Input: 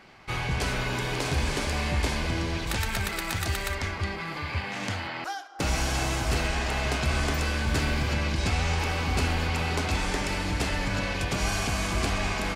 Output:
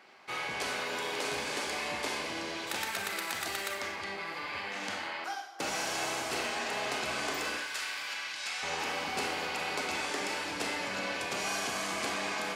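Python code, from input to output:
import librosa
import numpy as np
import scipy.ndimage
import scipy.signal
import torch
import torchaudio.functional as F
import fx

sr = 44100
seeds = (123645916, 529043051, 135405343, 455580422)

y = fx.highpass(x, sr, hz=fx.steps((0.0, 350.0), (7.57, 1300.0), (8.63, 340.0)), slope=12)
y = fx.rev_schroeder(y, sr, rt60_s=0.68, comb_ms=30, drr_db=4.5)
y = y * 10.0 ** (-4.5 / 20.0)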